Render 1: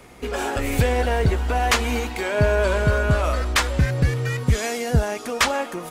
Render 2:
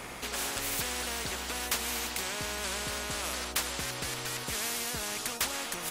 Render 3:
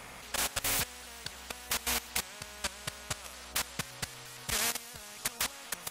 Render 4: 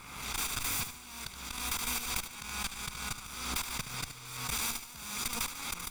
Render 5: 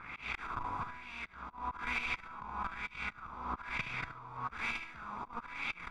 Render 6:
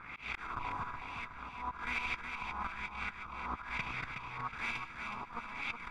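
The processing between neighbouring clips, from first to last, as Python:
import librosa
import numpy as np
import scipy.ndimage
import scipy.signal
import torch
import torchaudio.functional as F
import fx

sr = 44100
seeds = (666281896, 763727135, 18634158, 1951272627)

y1 = fx.spectral_comp(x, sr, ratio=4.0)
y1 = F.gain(torch.from_numpy(y1), -8.5).numpy()
y2 = fx.level_steps(y1, sr, step_db=17)
y2 = fx.peak_eq(y2, sr, hz=340.0, db=-9.0, octaves=0.54)
y2 = F.gain(torch.from_numpy(y2), 4.0).numpy()
y3 = fx.lower_of_two(y2, sr, delay_ms=0.85)
y3 = fx.echo_feedback(y3, sr, ms=73, feedback_pct=34, wet_db=-9.5)
y3 = fx.pre_swell(y3, sr, db_per_s=48.0)
y3 = F.gain(torch.from_numpy(y3), -1.5).numpy()
y4 = fx.comb_fb(y3, sr, f0_hz=330.0, decay_s=0.9, harmonics='all', damping=0.0, mix_pct=70)
y4 = fx.auto_swell(y4, sr, attack_ms=157.0)
y4 = fx.filter_lfo_lowpass(y4, sr, shape='sine', hz=1.1, low_hz=950.0, high_hz=2500.0, q=3.5)
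y4 = F.gain(torch.from_numpy(y4), 7.0).numpy()
y5 = fx.echo_feedback(y4, sr, ms=369, feedback_pct=45, wet_db=-6.5)
y5 = F.gain(torch.from_numpy(y5), -1.0).numpy()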